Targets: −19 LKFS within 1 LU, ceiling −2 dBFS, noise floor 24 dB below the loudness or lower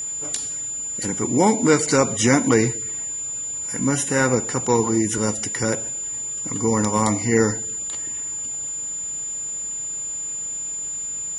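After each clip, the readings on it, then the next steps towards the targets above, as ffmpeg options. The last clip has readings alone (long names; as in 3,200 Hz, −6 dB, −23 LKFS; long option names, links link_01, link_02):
interfering tone 7,100 Hz; level of the tone −26 dBFS; integrated loudness −22.0 LKFS; sample peak −3.0 dBFS; target loudness −19.0 LKFS
→ -af "bandreject=frequency=7100:width=30"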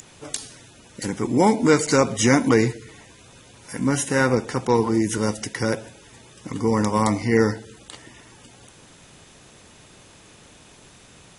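interfering tone none found; integrated loudness −21.5 LKFS; sample peak −3.0 dBFS; target loudness −19.0 LKFS
→ -af "volume=2.5dB,alimiter=limit=-2dB:level=0:latency=1"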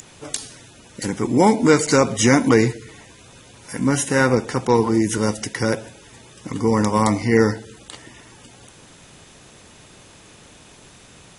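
integrated loudness −19.0 LKFS; sample peak −2.0 dBFS; background noise floor −47 dBFS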